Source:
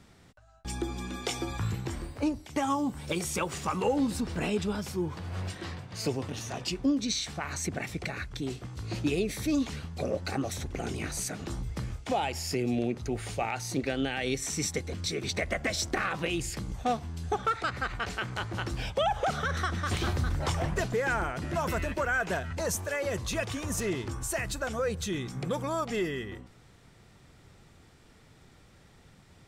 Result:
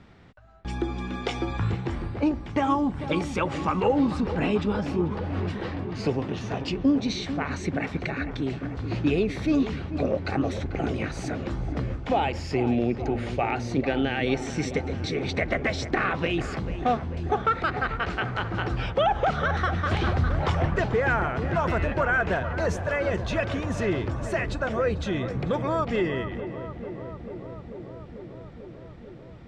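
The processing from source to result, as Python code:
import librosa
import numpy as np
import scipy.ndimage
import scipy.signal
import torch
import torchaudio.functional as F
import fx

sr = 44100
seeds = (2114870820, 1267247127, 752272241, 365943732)

p1 = scipy.signal.sosfilt(scipy.signal.butter(2, 3000.0, 'lowpass', fs=sr, output='sos'), x)
p2 = p1 + fx.echo_filtered(p1, sr, ms=442, feedback_pct=83, hz=1700.0, wet_db=-11.0, dry=0)
y = p2 * 10.0 ** (5.0 / 20.0)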